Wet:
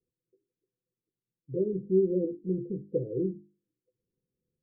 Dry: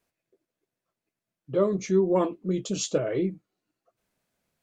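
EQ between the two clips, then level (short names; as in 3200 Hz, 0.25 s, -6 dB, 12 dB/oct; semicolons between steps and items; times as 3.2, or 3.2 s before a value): rippled Chebyshev low-pass 520 Hz, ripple 6 dB; notches 50/100/150/200/250/300/350/400 Hz; 0.0 dB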